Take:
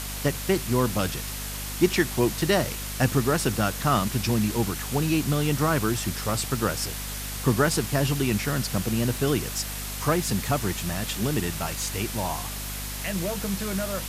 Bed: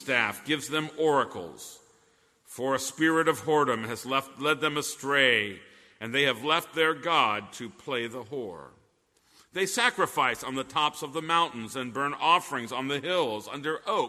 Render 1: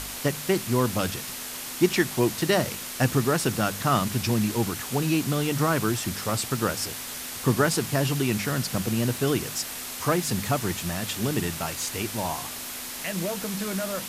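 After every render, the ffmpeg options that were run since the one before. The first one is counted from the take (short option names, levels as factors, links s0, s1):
-af "bandreject=f=50:t=h:w=4,bandreject=f=100:t=h:w=4,bandreject=f=150:t=h:w=4,bandreject=f=200:t=h:w=4"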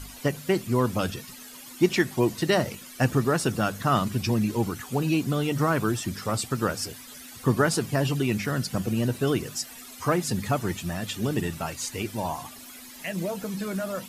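-af "afftdn=nr=14:nf=-36"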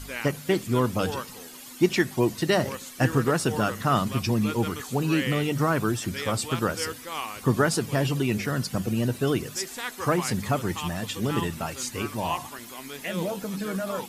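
-filter_complex "[1:a]volume=0.316[s0];[0:a][s0]amix=inputs=2:normalize=0"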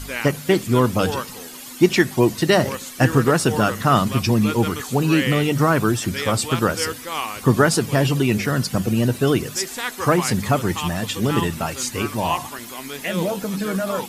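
-af "volume=2.11,alimiter=limit=0.794:level=0:latency=1"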